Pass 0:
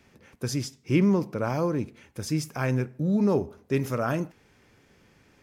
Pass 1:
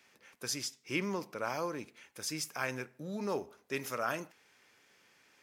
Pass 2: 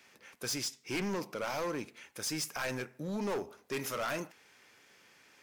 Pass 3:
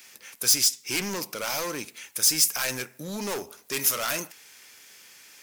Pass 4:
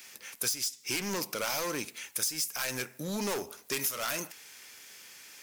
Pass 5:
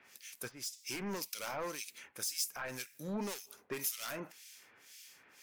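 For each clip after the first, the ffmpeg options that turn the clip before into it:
ffmpeg -i in.wav -af "highpass=frequency=1400:poles=1" out.wav
ffmpeg -i in.wav -af "volume=35dB,asoftclip=hard,volume=-35dB,volume=4dB" out.wav
ffmpeg -i in.wav -af "crystalizer=i=5.5:c=0,volume=1.5dB" out.wav
ffmpeg -i in.wav -af "acompressor=threshold=-28dB:ratio=12" out.wav
ffmpeg -i in.wav -filter_complex "[0:a]acrossover=split=2100[link_01][link_02];[link_01]aeval=exprs='val(0)*(1-1/2+1/2*cos(2*PI*1.9*n/s))':channel_layout=same[link_03];[link_02]aeval=exprs='val(0)*(1-1/2-1/2*cos(2*PI*1.9*n/s))':channel_layout=same[link_04];[link_03][link_04]amix=inputs=2:normalize=0,volume=-2.5dB" out.wav

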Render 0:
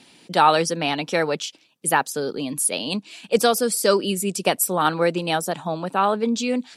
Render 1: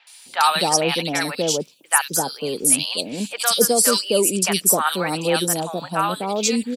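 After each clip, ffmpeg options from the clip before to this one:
ffmpeg -i in.wav -filter_complex "[0:a]acrossover=split=7400[link_01][link_02];[link_02]acompressor=threshold=-36dB:ratio=4:attack=1:release=60[link_03];[link_01][link_03]amix=inputs=2:normalize=0,aemphasis=mode=production:type=75fm,acrossover=split=780|2800[link_04][link_05][link_06];[link_06]adelay=70[link_07];[link_04]adelay=260[link_08];[link_08][link_05][link_07]amix=inputs=3:normalize=0,volume=1.5dB" out.wav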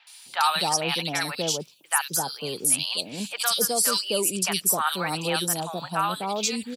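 ffmpeg -i in.wav -filter_complex "[0:a]equalizer=frequency=250:width_type=o:width=1:gain=-8,equalizer=frequency=500:width_type=o:width=1:gain=-7,equalizer=frequency=2000:width_type=o:width=1:gain=-3,equalizer=frequency=8000:width_type=o:width=1:gain=-4,asplit=2[link_01][link_02];[link_02]alimiter=limit=-16dB:level=0:latency=1:release=207,volume=1dB[link_03];[link_01][link_03]amix=inputs=2:normalize=0,highpass=56,volume=-6dB" out.wav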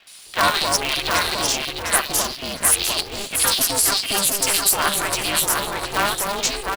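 ffmpeg -i in.wav -filter_complex "[0:a]aecho=1:1:704|1408|2112:0.596|0.125|0.0263,acrossover=split=670[link_01][link_02];[link_01]alimiter=level_in=6dB:limit=-24dB:level=0:latency=1:release=132,volume=-6dB[link_03];[link_03][link_02]amix=inputs=2:normalize=0,aeval=exprs='val(0)*sgn(sin(2*PI*200*n/s))':channel_layout=same,volume=4.5dB" out.wav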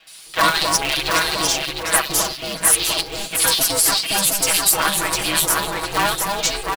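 ffmpeg -i in.wav -af "aecho=1:1:6.2:0.92,volume=-1dB" out.wav

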